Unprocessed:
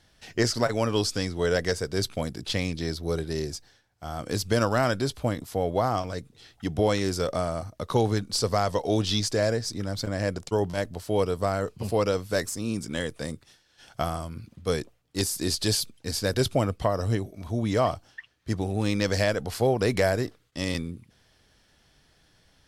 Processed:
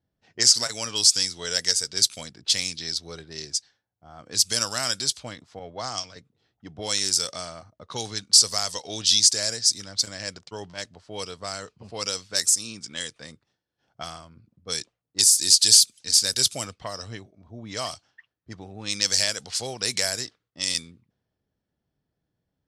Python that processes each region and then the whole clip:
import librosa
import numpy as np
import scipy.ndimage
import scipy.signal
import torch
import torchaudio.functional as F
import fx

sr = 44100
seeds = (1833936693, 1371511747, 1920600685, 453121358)

y = fx.chain(x, sr, fx.steep_lowpass(hz=7700.0, slope=36),
    fx.band_widen(depth_pct=70), at=(5.59, 6.16))
y = fx.weighting(y, sr, curve='ITU-R 468')
y = fx.env_lowpass(y, sr, base_hz=400.0, full_db=-21.5)
y = fx.bass_treble(y, sr, bass_db=13, treble_db=12)
y = F.gain(torch.from_numpy(y), -7.0).numpy()